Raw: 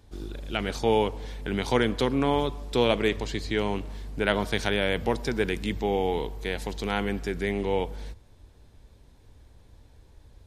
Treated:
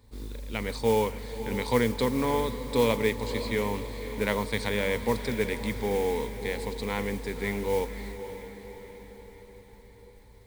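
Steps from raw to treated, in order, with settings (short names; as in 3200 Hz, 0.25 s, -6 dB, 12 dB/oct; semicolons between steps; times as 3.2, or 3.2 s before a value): ripple EQ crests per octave 0.96, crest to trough 10 dB; modulation noise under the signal 19 dB; diffused feedback echo 0.551 s, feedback 56%, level -11 dB; gain -4 dB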